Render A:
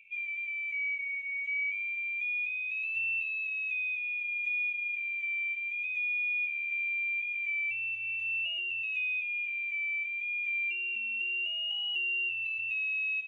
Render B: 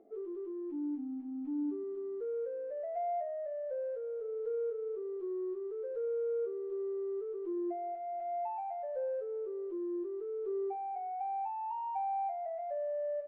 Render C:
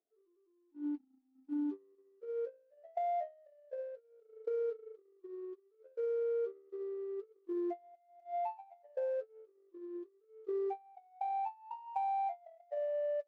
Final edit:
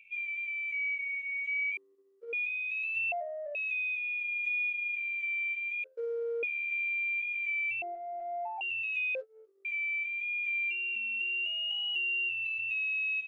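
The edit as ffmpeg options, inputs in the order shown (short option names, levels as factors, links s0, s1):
-filter_complex "[2:a]asplit=3[s0][s1][s2];[1:a]asplit=2[s3][s4];[0:a]asplit=6[s5][s6][s7][s8][s9][s10];[s5]atrim=end=1.772[s11];[s0]atrim=start=1.768:end=2.332[s12];[s6]atrim=start=2.328:end=3.122[s13];[s3]atrim=start=3.118:end=3.552[s14];[s7]atrim=start=3.548:end=5.842[s15];[s1]atrim=start=5.838:end=6.432[s16];[s8]atrim=start=6.428:end=7.822[s17];[s4]atrim=start=7.818:end=8.612[s18];[s9]atrim=start=8.608:end=9.152[s19];[s2]atrim=start=9.148:end=9.652[s20];[s10]atrim=start=9.648[s21];[s11][s12]acrossfade=d=0.004:c1=hsin:c2=hsin[s22];[s22][s13]acrossfade=d=0.004:c1=hsin:c2=hsin[s23];[s23][s14]acrossfade=d=0.004:c1=hsin:c2=hsin[s24];[s24][s15]acrossfade=d=0.004:c1=hsin:c2=hsin[s25];[s25][s16]acrossfade=d=0.004:c1=hsin:c2=hsin[s26];[s26][s17]acrossfade=d=0.004:c1=hsin:c2=hsin[s27];[s27][s18]acrossfade=d=0.004:c1=hsin:c2=hsin[s28];[s28][s19]acrossfade=d=0.004:c1=hsin:c2=hsin[s29];[s29][s20]acrossfade=d=0.004:c1=hsin:c2=hsin[s30];[s30][s21]acrossfade=d=0.004:c1=hsin:c2=hsin"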